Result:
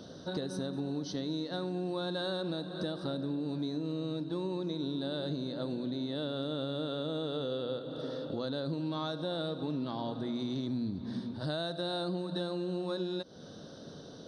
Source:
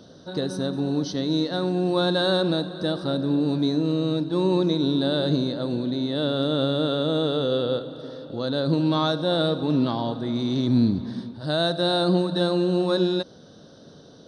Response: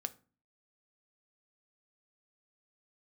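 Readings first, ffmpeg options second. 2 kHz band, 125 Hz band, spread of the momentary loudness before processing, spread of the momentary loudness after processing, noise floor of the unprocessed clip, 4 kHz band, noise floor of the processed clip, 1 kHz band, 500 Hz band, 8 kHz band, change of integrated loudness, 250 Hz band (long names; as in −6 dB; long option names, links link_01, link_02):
−12.0 dB, −12.0 dB, 6 LU, 3 LU, −48 dBFS, −12.0 dB, −49 dBFS, −12.0 dB, −12.0 dB, can't be measured, −12.0 dB, −12.0 dB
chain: -af "bandreject=frequency=60:width_type=h:width=6,bandreject=frequency=120:width_type=h:width=6,acompressor=threshold=-33dB:ratio=6"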